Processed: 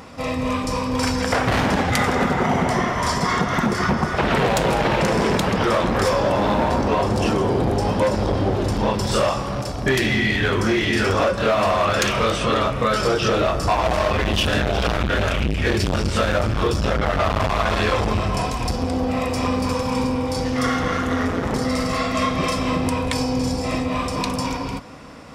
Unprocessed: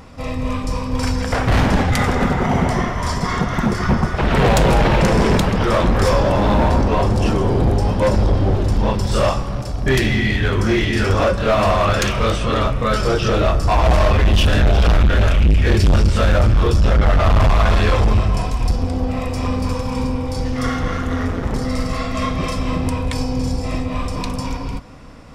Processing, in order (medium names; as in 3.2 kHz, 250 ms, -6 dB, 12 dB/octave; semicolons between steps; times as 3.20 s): high-pass 210 Hz 6 dB/octave; compression, threshold -19 dBFS, peak gain reduction 7 dB; trim +3.5 dB